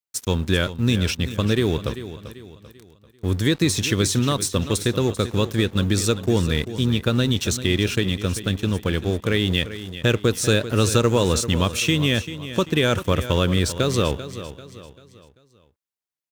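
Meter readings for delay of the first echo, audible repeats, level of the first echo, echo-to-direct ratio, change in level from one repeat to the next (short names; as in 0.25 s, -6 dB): 0.391 s, 3, -13.0 dB, -12.0 dB, -8.0 dB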